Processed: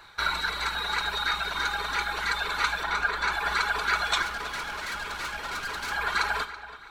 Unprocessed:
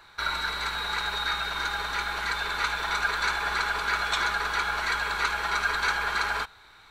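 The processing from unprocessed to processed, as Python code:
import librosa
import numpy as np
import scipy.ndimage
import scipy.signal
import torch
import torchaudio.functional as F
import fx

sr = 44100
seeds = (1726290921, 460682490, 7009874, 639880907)

p1 = fx.dereverb_blind(x, sr, rt60_s=0.83)
p2 = fx.high_shelf(p1, sr, hz=3400.0, db=-8.5, at=(2.83, 3.32))
p3 = fx.tube_stage(p2, sr, drive_db=33.0, bias=0.7, at=(4.22, 5.92))
p4 = p3 + fx.echo_filtered(p3, sr, ms=330, feedback_pct=47, hz=3500.0, wet_db=-14.0, dry=0)
p5 = fx.rev_schroeder(p4, sr, rt60_s=0.48, comb_ms=30, drr_db=13.5)
y = p5 * librosa.db_to_amplitude(2.5)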